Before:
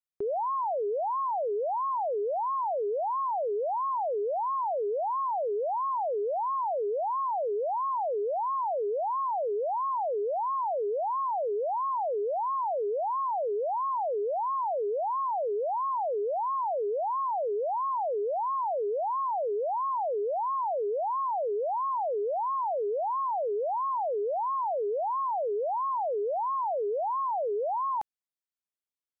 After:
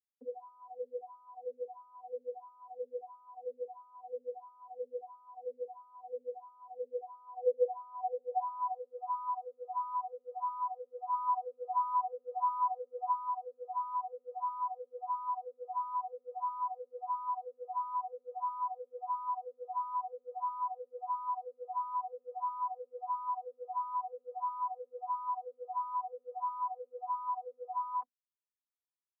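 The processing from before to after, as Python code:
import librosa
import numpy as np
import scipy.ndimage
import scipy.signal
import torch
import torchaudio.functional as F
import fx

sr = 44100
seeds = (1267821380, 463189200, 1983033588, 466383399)

y = fx.peak_eq(x, sr, hz=890.0, db=4.5, octaves=2.2, at=(11.11, 13.11), fade=0.02)
y = fx.vocoder(y, sr, bands=32, carrier='saw', carrier_hz=248.0)
y = fx.filter_sweep_bandpass(y, sr, from_hz=320.0, to_hz=1100.0, start_s=6.77, end_s=8.98, q=4.2)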